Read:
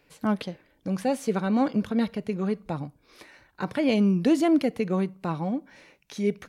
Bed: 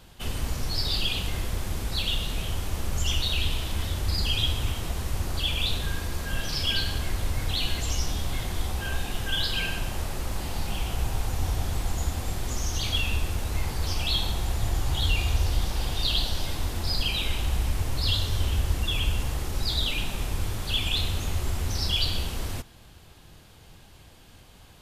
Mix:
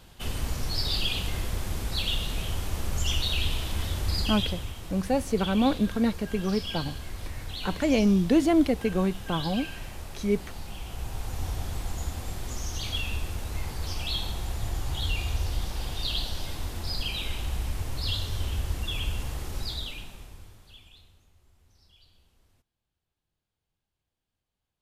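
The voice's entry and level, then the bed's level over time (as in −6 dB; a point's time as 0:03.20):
4.05 s, 0.0 dB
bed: 0:04.17 −1 dB
0:04.73 −9 dB
0:10.81 −9 dB
0:11.40 −4.5 dB
0:19.59 −4.5 dB
0:21.32 −34.5 dB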